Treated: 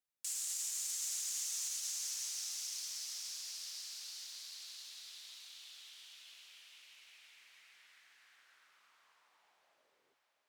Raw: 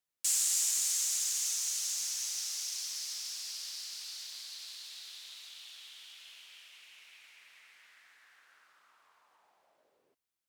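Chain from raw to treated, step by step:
brickwall limiter −24.5 dBFS, peak gain reduction 7.5 dB
on a send: feedback delay with all-pass diffusion 607 ms, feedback 57%, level −10 dB
on the sum: level −5.5 dB

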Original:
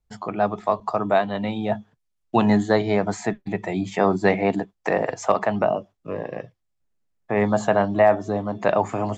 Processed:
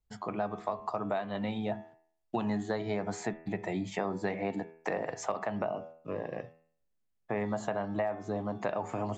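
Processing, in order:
hum removal 81.28 Hz, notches 34
downward compressor 6 to 1, threshold −23 dBFS, peak gain reduction 12 dB
level −6 dB

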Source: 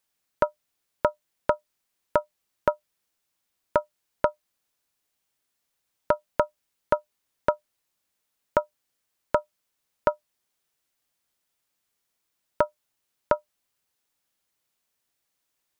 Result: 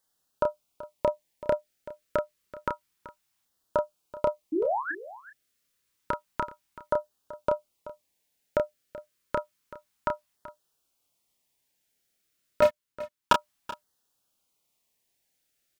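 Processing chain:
0:04.52–0:04.92: sound drawn into the spectrogram rise 290–1,800 Hz −28 dBFS
auto-filter notch saw down 0.29 Hz 440–2,500 Hz
brickwall limiter −13 dBFS, peak gain reduction 7 dB
0:12.62–0:13.33: leveller curve on the samples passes 5
double-tracking delay 30 ms −5 dB
on a send: single-tap delay 381 ms −16.5 dB
on the sum: level +1.5 dB

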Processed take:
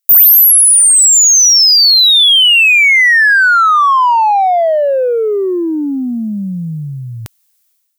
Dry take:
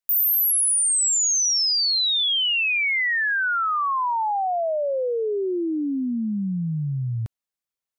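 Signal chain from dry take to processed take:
spectral tilt +4.5 dB per octave
automatic gain control gain up to 15.5 dB
in parallel at −5.5 dB: soft clipping −15.5 dBFS, distortion −8 dB
on the sum: level −1.5 dB

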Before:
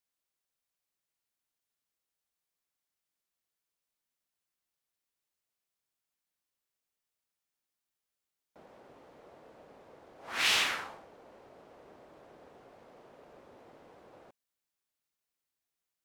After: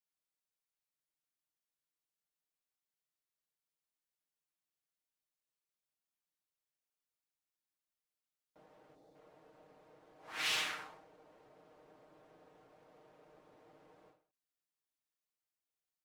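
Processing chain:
gain on a spectral selection 0:08.94–0:09.15, 870–3,400 Hz −11 dB
comb filter 6.5 ms
every ending faded ahead of time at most 130 dB per second
level −9 dB

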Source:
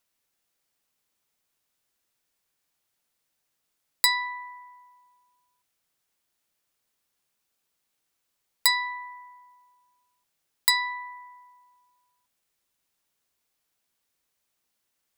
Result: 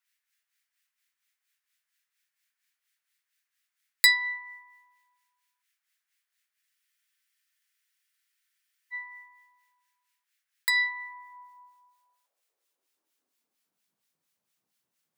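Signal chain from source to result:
two-band tremolo in antiphase 4.3 Hz, depth 70%, crossover 1,300 Hz
high-pass filter sweep 1,800 Hz → 150 Hz, 0:10.77–0:14.02
frozen spectrum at 0:06.64, 2.28 s

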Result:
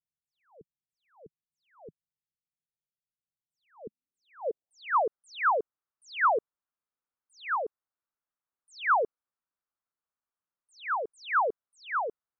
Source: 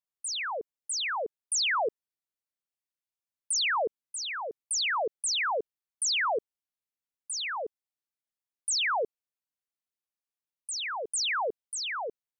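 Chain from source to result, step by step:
low-pass filter sweep 160 Hz → 1,300 Hz, 0:03.71–0:05.04

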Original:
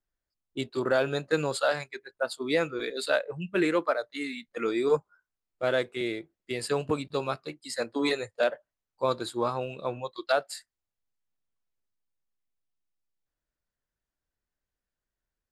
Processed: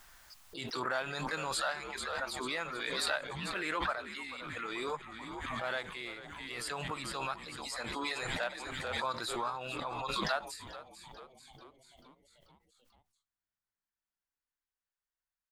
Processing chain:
low shelf with overshoot 650 Hz −10 dB, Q 1.5
pitch-shifted copies added +4 semitones −15 dB
on a send: echo with shifted repeats 439 ms, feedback 61%, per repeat −100 Hz, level −14.5 dB
on the sum: background raised ahead of every attack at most 23 dB per second
level −7 dB

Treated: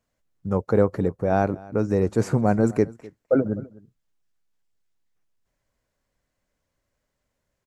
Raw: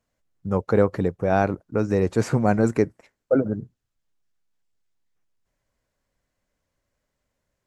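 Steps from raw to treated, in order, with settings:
0:00.53–0:02.82: parametric band 2,800 Hz −6 dB 2.1 octaves
single-tap delay 254 ms −21.5 dB

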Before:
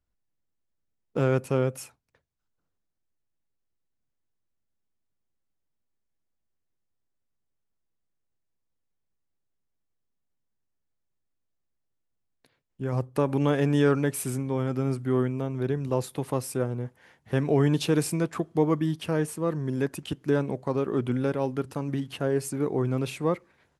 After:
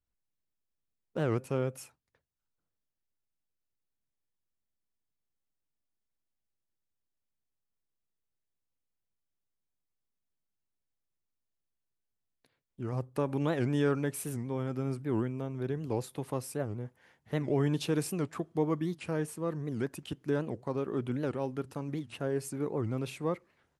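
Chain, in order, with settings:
wow of a warped record 78 rpm, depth 250 cents
level −6.5 dB

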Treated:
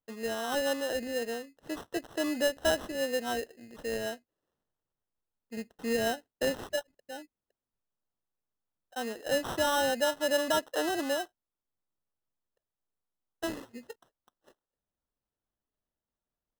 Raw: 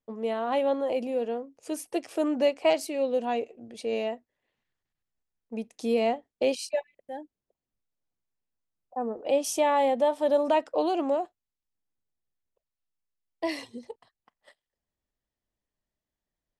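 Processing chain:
sample-rate reduction 2,300 Hz, jitter 0%
level −4.5 dB

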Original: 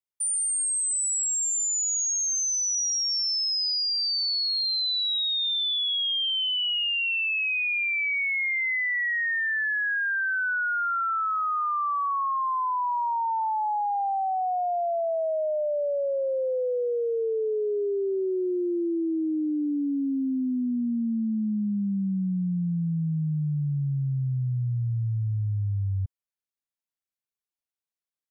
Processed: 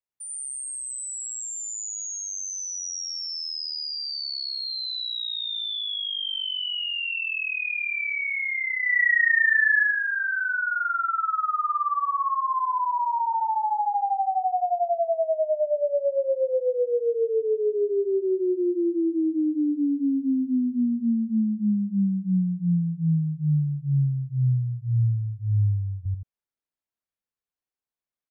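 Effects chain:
gain on a spectral selection 0:07.12–0:09.83, 280–2,000 Hz +7 dB
high-shelf EQ 2,800 Hz −11 dB
loudspeakers that aren't time-aligned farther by 30 metres −1 dB, 59 metres −8 dB

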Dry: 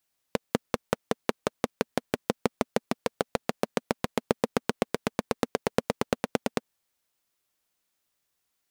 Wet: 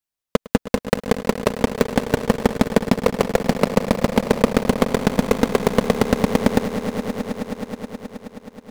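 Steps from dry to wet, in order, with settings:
low-shelf EQ 91 Hz +8.5 dB
leveller curve on the samples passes 5
echo that builds up and dies away 106 ms, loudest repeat 5, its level −15 dB

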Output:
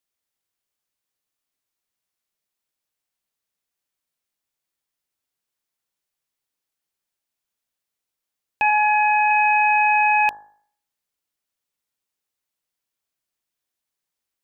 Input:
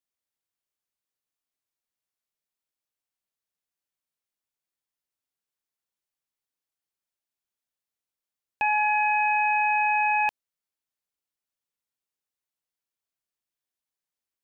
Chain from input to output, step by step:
0:08.70–0:09.31: bass and treble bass +9 dB, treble −13 dB
hum removal 52.02 Hz, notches 34
level +6 dB

